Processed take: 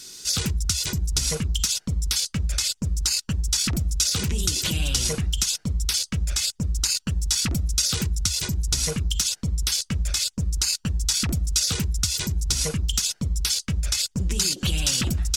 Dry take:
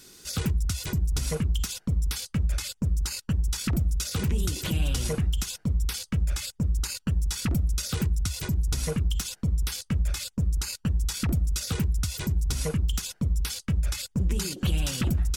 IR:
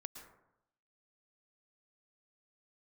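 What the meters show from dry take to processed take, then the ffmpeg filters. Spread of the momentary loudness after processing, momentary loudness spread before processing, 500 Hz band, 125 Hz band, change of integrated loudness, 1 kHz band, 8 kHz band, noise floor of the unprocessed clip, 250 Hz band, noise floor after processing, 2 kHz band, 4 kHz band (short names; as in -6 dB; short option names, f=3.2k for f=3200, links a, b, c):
3 LU, 2 LU, +0.5 dB, 0.0 dB, +4.5 dB, +2.0 dB, +11.0 dB, -62 dBFS, 0.0 dB, -60 dBFS, +5.0 dB, +10.5 dB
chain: -af "equalizer=f=5.6k:w=0.54:g=12.5"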